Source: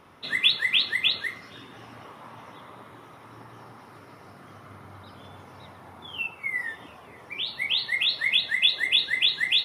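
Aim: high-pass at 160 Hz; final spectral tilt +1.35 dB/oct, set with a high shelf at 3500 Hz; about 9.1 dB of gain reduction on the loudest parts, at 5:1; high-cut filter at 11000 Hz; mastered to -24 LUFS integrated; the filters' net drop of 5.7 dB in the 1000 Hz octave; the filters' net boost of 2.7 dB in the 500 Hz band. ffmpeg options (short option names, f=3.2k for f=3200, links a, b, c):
-af "highpass=160,lowpass=11k,equalizer=f=500:t=o:g=6,equalizer=f=1k:t=o:g=-9,highshelf=f=3.5k:g=-3,acompressor=threshold=-29dB:ratio=5,volume=8dB"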